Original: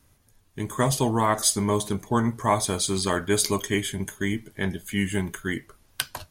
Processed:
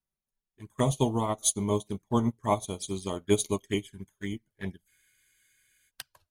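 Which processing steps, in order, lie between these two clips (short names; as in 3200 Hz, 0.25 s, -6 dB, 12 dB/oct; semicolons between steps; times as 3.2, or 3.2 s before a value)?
envelope flanger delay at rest 5.5 ms, full sweep at -22 dBFS; spectral freeze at 4.91, 0.97 s; upward expander 2.5:1, over -39 dBFS; gain +2 dB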